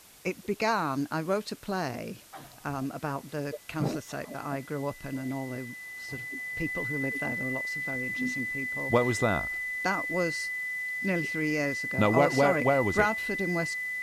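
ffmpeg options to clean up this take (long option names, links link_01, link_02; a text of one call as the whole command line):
ffmpeg -i in.wav -af "bandreject=frequency=2000:width=30,afwtdn=0.0022" out.wav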